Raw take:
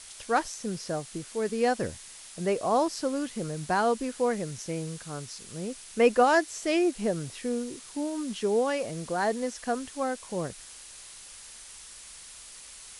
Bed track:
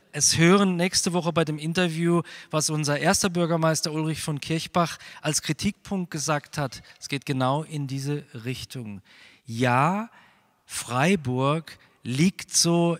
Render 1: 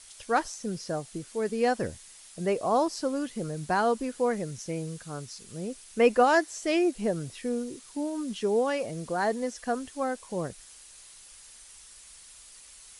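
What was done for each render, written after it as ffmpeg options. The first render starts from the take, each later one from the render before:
-af "afftdn=nr=6:nf=-47"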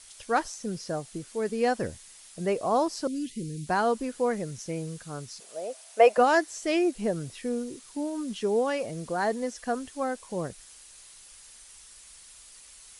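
-filter_complex "[0:a]asettb=1/sr,asplit=3[a][b][c];[a]atrim=end=3.074[d];[b]atrim=start=3.07:end=3.67,asetpts=PTS-STARTPTS,afade=t=in:d=0.004:c=qsin,afade=t=out:st=0.596:d=0.004:c=qsin,asuperstop=centerf=920:order=8:qfactor=0.53[e];[c]atrim=start=3.666[f];[d][e]acrossfade=d=0.004:c1=hsin:c2=qsin[g];[g][f]acrossfade=d=0.004:c1=qsin:c2=hsin,asettb=1/sr,asplit=3[h][i][j];[h]atrim=end=5.404[k];[i]atrim=start=5.4:end=6.18,asetpts=PTS-STARTPTS,afade=t=in:d=0.004:c=qsin,afade=t=out:st=0.776:d=0.004:c=qsin,highpass=f=640:t=q:w=7.4[l];[j]atrim=start=6.176[m];[k][l]acrossfade=d=0.004:c1=hsin:c2=qsin[n];[n][m]acrossfade=d=0.004:c1=qsin:c2=hsin"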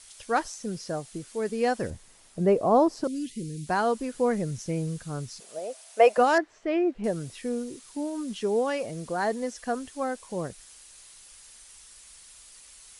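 -filter_complex "[0:a]asettb=1/sr,asplit=3[a][b][c];[a]atrim=end=1.904[d];[b]atrim=start=1.9:end=3.04,asetpts=PTS-STARTPTS,afade=t=in:d=0.004:c=qsin,afade=t=out:st=1.136:d=0.004:c=qsin,tiltshelf=f=1.3k:g=7.5[e];[c]atrim=start=3.036[f];[d][e]acrossfade=d=0.004:c1=hsin:c2=qsin[g];[g][f]acrossfade=d=0.004:c1=qsin:c2=hsin,asettb=1/sr,asplit=3[h][i][j];[h]atrim=end=4.144[k];[i]atrim=start=4.14:end=5.59,asetpts=PTS-STARTPTS,afade=t=in:d=0.004:c=qsin,afade=t=out:st=1.446:d=0.004:c=qsin,lowshelf=f=240:g=8.5[l];[j]atrim=start=5.586[m];[k][l]acrossfade=d=0.004:c1=hsin:c2=qsin[n];[n][m]acrossfade=d=0.004:c1=qsin:c2=hsin,asettb=1/sr,asplit=3[o][p][q];[o]atrim=end=6.384[r];[p]atrim=start=6.38:end=7.04,asetpts=PTS-STARTPTS,afade=t=in:d=0.004:c=qsin,afade=t=out:st=0.656:d=0.004:c=qsin,lowpass=1.9k[s];[q]atrim=start=7.036[t];[r][s]acrossfade=d=0.004:c1=hsin:c2=qsin[u];[u][t]acrossfade=d=0.004:c1=qsin:c2=hsin"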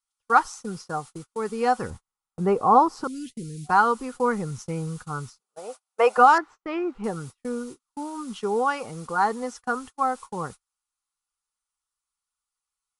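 -af "superequalizer=6b=0.708:8b=0.447:9b=2.82:10b=3.98,agate=range=-38dB:threshold=-38dB:ratio=16:detection=peak"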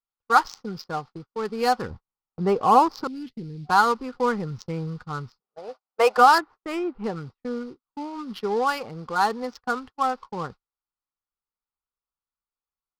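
-af "lowpass=f=4.8k:t=q:w=5.1,adynamicsmooth=sensitivity=6.5:basefreq=1.1k"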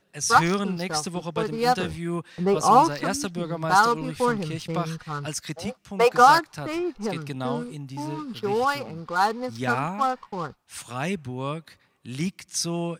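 -filter_complex "[1:a]volume=-7dB[a];[0:a][a]amix=inputs=2:normalize=0"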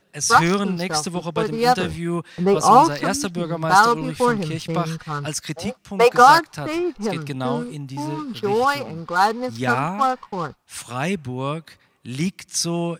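-af "volume=4.5dB,alimiter=limit=-1dB:level=0:latency=1"

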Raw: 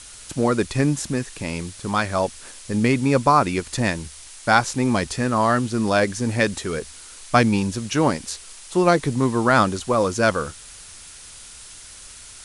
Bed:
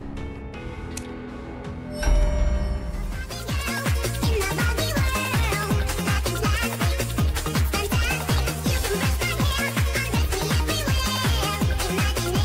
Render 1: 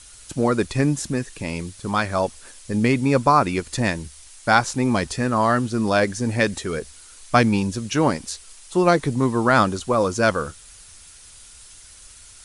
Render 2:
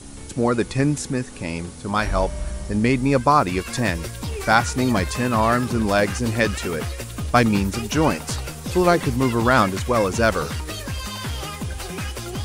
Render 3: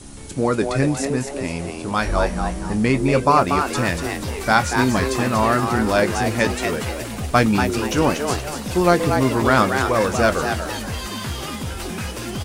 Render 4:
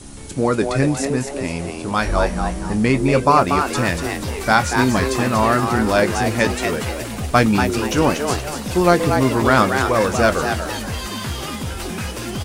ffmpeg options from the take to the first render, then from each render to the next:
-af "afftdn=nr=6:nf=-42"
-filter_complex "[1:a]volume=-6.5dB[a];[0:a][a]amix=inputs=2:normalize=0"
-filter_complex "[0:a]asplit=2[a][b];[b]adelay=23,volume=-13dB[c];[a][c]amix=inputs=2:normalize=0,asplit=5[d][e][f][g][h];[e]adelay=237,afreqshift=140,volume=-6dB[i];[f]adelay=474,afreqshift=280,volume=-15.1dB[j];[g]adelay=711,afreqshift=420,volume=-24.2dB[k];[h]adelay=948,afreqshift=560,volume=-33.4dB[l];[d][i][j][k][l]amix=inputs=5:normalize=0"
-af "volume=1.5dB,alimiter=limit=-1dB:level=0:latency=1"

